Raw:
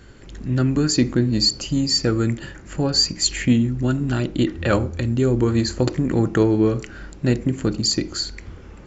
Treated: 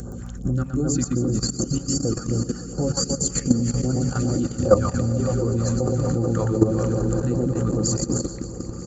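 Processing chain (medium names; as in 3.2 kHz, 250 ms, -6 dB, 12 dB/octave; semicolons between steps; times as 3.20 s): reverb removal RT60 0.88 s; high-pass 40 Hz 12 dB/octave; high-order bell 3 kHz -15.5 dB; upward compressor, threshold -24 dBFS; reverse bouncing-ball echo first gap 120 ms, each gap 1.2×, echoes 5; phase shifter stages 2, 2.6 Hz, lowest notch 330–2400 Hz; small resonant body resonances 530/750/1200 Hz, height 13 dB, ringing for 95 ms; mains buzz 60 Hz, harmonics 4, -34 dBFS -2 dB/octave; echo with a slow build-up 189 ms, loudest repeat 5, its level -16 dB; level held to a coarse grid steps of 12 dB; trim +2.5 dB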